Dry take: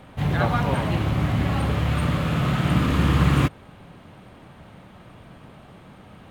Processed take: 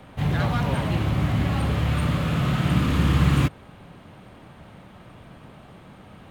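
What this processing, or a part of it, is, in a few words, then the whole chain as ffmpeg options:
one-band saturation: -filter_complex "[0:a]acrossover=split=260|2400[a][b][c];[b]asoftclip=type=tanh:threshold=-26dB[d];[a][d][c]amix=inputs=3:normalize=0"

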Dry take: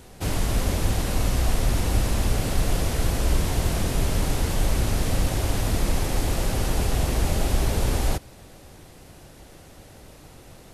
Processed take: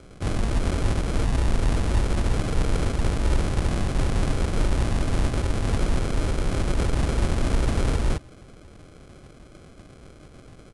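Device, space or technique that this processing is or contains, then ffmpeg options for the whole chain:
crushed at another speed: -af "asetrate=88200,aresample=44100,acrusher=samples=24:mix=1:aa=0.000001,asetrate=22050,aresample=44100"

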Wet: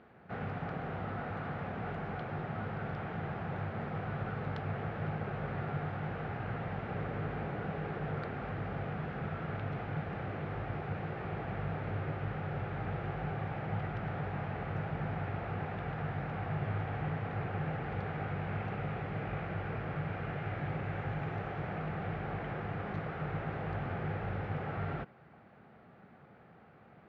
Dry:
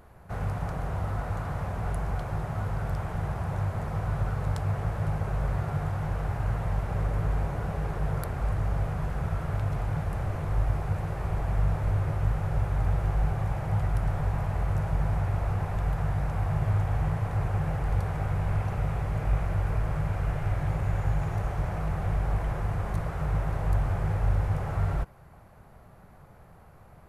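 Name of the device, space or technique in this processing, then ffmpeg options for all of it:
kitchen radio: -af "highpass=190,equalizer=f=230:t=q:w=4:g=4,equalizer=f=600:t=q:w=4:g=-5,equalizer=f=1k:t=q:w=4:g=-9,lowpass=f=3.4k:w=0.5412,lowpass=f=3.4k:w=1.3066"

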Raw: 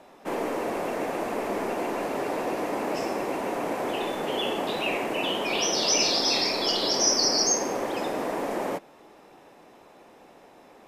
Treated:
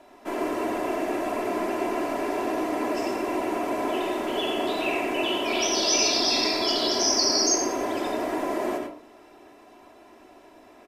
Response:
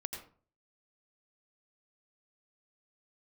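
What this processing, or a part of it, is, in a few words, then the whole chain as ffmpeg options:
microphone above a desk: -filter_complex "[0:a]aecho=1:1:3:0.64[a];[1:a]atrim=start_sample=2205[b];[a][b]afir=irnorm=-1:irlink=0"

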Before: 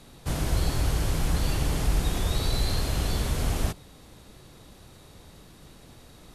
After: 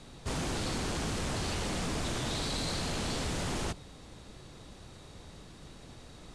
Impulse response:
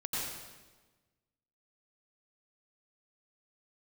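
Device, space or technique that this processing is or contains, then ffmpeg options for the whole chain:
synthesiser wavefolder: -af "aeval=exprs='0.0376*(abs(mod(val(0)/0.0376+3,4)-2)-1)':c=same,lowpass=f=9k:w=0.5412,lowpass=f=9k:w=1.3066"

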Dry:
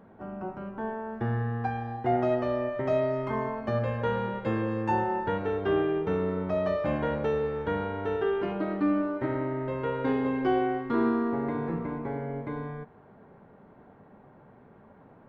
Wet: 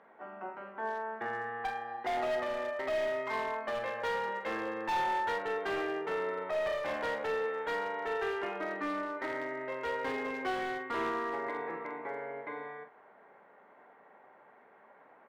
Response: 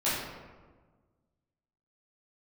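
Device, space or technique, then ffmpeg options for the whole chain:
megaphone: -filter_complex "[0:a]highpass=620,lowpass=3.7k,equalizer=f=2k:t=o:w=0.35:g=7.5,asoftclip=type=hard:threshold=-30dB,asplit=2[a][b];[b]adelay=45,volume=-9dB[c];[a][c]amix=inputs=2:normalize=0"

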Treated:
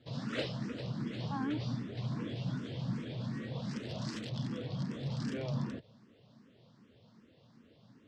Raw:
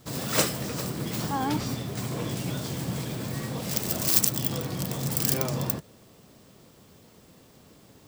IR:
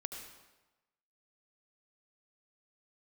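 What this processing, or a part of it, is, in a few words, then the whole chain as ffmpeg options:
barber-pole phaser into a guitar amplifier: -filter_complex "[0:a]asplit=2[a][b];[b]afreqshift=2.6[c];[a][c]amix=inputs=2:normalize=1,asoftclip=type=tanh:threshold=-19dB,highpass=97,equalizer=f=120:t=q:w=4:g=6,equalizer=f=230:t=q:w=4:g=6,equalizer=f=380:t=q:w=4:g=-3,equalizer=f=790:t=q:w=4:g=-5,equalizer=f=1.2k:t=q:w=4:g=-3,equalizer=f=2.3k:t=q:w=4:g=-4,lowpass=f=4.4k:w=0.5412,lowpass=f=4.4k:w=1.3066,volume=-5dB"

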